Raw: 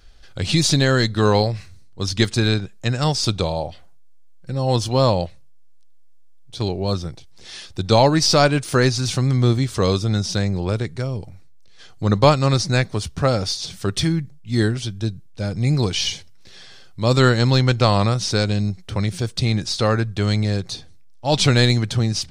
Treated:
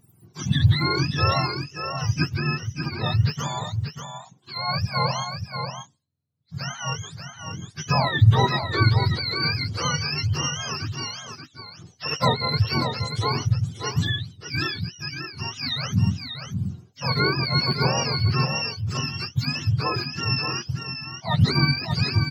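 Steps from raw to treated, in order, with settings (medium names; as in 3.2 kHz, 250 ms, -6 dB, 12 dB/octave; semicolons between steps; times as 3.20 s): spectrum inverted on a logarithmic axis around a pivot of 750 Hz; 2.34–3.06 s: tone controls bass -1 dB, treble -10 dB; on a send: delay 586 ms -7 dB; on the sum: trim -5 dB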